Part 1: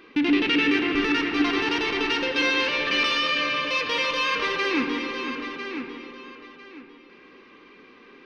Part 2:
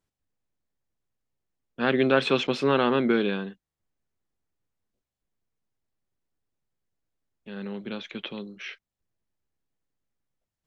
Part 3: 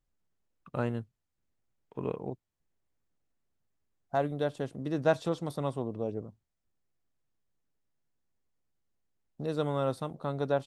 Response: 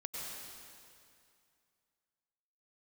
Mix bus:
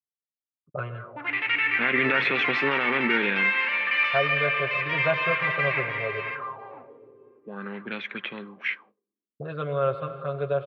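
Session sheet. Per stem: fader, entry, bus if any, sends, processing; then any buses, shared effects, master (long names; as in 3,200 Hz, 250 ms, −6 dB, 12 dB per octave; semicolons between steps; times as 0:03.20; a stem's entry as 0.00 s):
−8.5 dB, 1.00 s, no bus, send −13.5 dB, low shelf with overshoot 510 Hz −14 dB, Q 1.5
−3.0 dB, 0.00 s, bus A, send −19.5 dB, high-shelf EQ 2,100 Hz +10.5 dB
0.0 dB, 0.00 s, bus A, send −7 dB, phaser with its sweep stopped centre 1,300 Hz, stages 8; comb filter 7.4 ms, depth 77%; automatic ducking −8 dB, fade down 1.70 s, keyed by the second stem
bus A: 0.0 dB, brickwall limiter −18.5 dBFS, peak gain reduction 10 dB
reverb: on, RT60 2.4 s, pre-delay 88 ms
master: noise gate −53 dBFS, range −29 dB; high-pass filter 89 Hz; envelope-controlled low-pass 270–2,100 Hz up, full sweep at −32 dBFS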